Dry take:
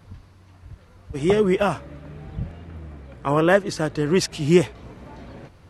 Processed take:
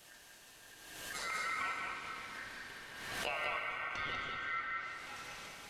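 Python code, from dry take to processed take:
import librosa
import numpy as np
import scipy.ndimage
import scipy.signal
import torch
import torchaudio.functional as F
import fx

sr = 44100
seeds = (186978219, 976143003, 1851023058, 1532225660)

p1 = librosa.effects.preemphasis(x, coef=0.97, zi=[0.0])
p2 = fx.env_lowpass_down(p1, sr, base_hz=380.0, full_db=-35.0)
p3 = fx.peak_eq(p2, sr, hz=1000.0, db=3.5, octaves=0.77)
p4 = fx.over_compress(p3, sr, threshold_db=-48.0, ratio=-0.5)
p5 = p3 + (p4 * 10.0 ** (-2.0 / 20.0))
p6 = p5 * np.sin(2.0 * np.pi * 1700.0 * np.arange(len(p5)) / sr)
p7 = p6 + 10.0 ** (-4.0 / 20.0) * np.pad(p6, (int(193 * sr / 1000.0), 0))[:len(p6)]
p8 = fx.rev_plate(p7, sr, seeds[0], rt60_s=3.3, hf_ratio=0.9, predelay_ms=0, drr_db=1.0)
p9 = fx.pre_swell(p8, sr, db_per_s=40.0)
y = p9 * 10.0 ** (3.0 / 20.0)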